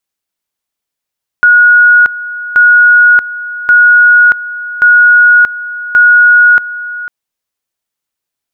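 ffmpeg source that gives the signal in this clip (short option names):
-f lavfi -i "aevalsrc='pow(10,(-1.5-16*gte(mod(t,1.13),0.63))/20)*sin(2*PI*1450*t)':d=5.65:s=44100"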